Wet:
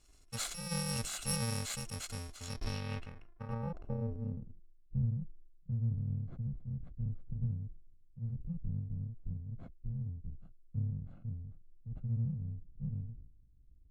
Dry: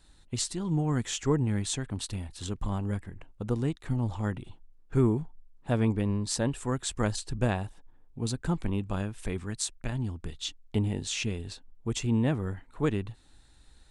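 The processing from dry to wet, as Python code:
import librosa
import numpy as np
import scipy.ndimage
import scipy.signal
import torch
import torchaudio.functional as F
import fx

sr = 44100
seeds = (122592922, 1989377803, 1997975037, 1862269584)

y = fx.bit_reversed(x, sr, seeds[0], block=128)
y = fx.filter_sweep_lowpass(y, sr, from_hz=8000.0, to_hz=150.0, start_s=2.34, end_s=4.73, q=1.4)
y = fx.sustainer(y, sr, db_per_s=67.0)
y = y * librosa.db_to_amplitude(-6.0)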